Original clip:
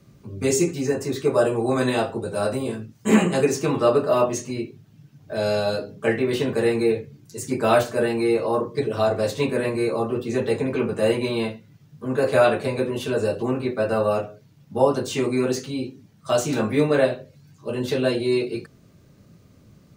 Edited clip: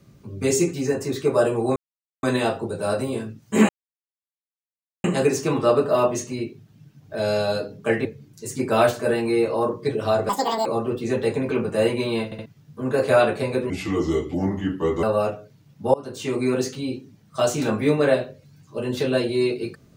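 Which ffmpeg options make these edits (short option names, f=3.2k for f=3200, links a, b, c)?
-filter_complex "[0:a]asplit=12[a][b][c][d][e][f][g][h][i][j][k][l];[a]atrim=end=1.76,asetpts=PTS-STARTPTS,afade=t=out:st=1.756:d=0.004:c=hsin,apad=pad_dur=0.47[m];[b]atrim=start=1.76:end=3.22,asetpts=PTS-STARTPTS,afade=t=in:d=0.004:c=hsin,afade=t=out:st=1.456:d=0.004:c=hsin,apad=pad_dur=1.35[n];[c]atrim=start=3.22:end=6.232,asetpts=PTS-STARTPTS,afade=t=in:d=0.004:c=hsin[o];[d]atrim=start=6.968:end=9.214[p];[e]atrim=start=9.21:end=9.9,asetpts=PTS-STARTPTS,asetrate=82908,aresample=44100[q];[f]atrim=start=9.896:end=11.562[r];[g]atrim=start=11.488:end=11.562[s];[h]atrim=start=11.488:end=11.562[t];[i]atrim=start=11.698:end=12.944[u];[j]atrim=start=12.94:end=13.94,asetpts=PTS-STARTPTS,asetrate=33075,aresample=44100[v];[k]atrim=start=13.936:end=14.85,asetpts=PTS-STARTPTS,afade=t=out:st=0.91:d=0.004:c=hsin:silence=0.0841395[w];[l]atrim=start=14.85,asetpts=PTS-STARTPTS,afade=t=in:d=0.49:silence=0.0841395[x];[m][n][o]concat=n=3:v=0:a=1[y];[y][p]acrossfade=d=0.004:c1=hsin:c2=hsin[z];[z][q]acrossfade=d=0.004:c1=hsin:c2=hsin[aa];[aa][r]acrossfade=d=0.004:c1=hsin:c2=hsin[ab];[ab][s]acrossfade=d=0.004:c1=hsin:c2=hsin[ac];[ac][t]acrossfade=d=0.004:c1=hsin:c2=hsin[ad];[ad][u]acrossfade=d=0.004:c1=hsin:c2=hsin[ae];[ae][v]acrossfade=d=0.004:c1=hsin:c2=hsin[af];[w][x]concat=n=2:v=0:a=1[ag];[af][ag]acrossfade=d=0.004:c1=hsin:c2=hsin"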